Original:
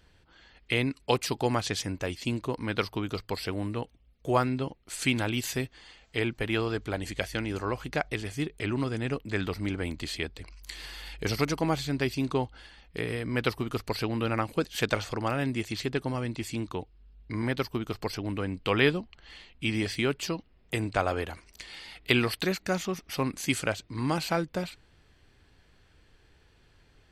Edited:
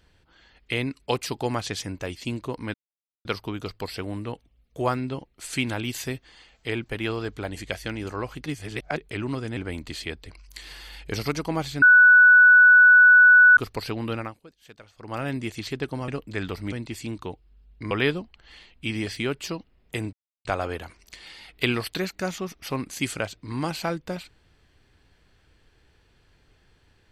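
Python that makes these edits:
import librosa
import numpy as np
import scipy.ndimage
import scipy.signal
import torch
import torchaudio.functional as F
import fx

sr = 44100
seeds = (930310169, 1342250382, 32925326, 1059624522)

y = fx.edit(x, sr, fx.insert_silence(at_s=2.74, length_s=0.51),
    fx.reverse_span(start_s=7.95, length_s=0.51),
    fx.move(start_s=9.06, length_s=0.64, to_s=16.21),
    fx.bleep(start_s=11.95, length_s=1.75, hz=1480.0, db=-9.5),
    fx.fade_down_up(start_s=14.26, length_s=1.09, db=-21.0, fade_s=0.25),
    fx.cut(start_s=17.4, length_s=1.3),
    fx.insert_silence(at_s=20.92, length_s=0.32), tone=tone)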